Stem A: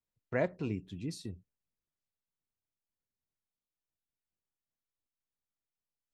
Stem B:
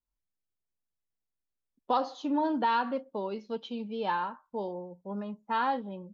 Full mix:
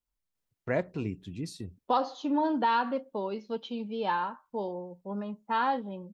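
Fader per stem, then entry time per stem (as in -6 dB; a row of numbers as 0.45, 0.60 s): +2.0, +1.0 dB; 0.35, 0.00 s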